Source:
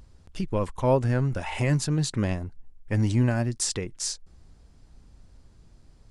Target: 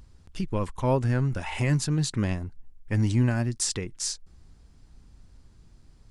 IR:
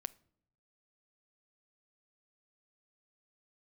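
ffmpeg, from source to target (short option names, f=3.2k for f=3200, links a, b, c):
-af "equalizer=f=580:w=1.5:g=-4.5"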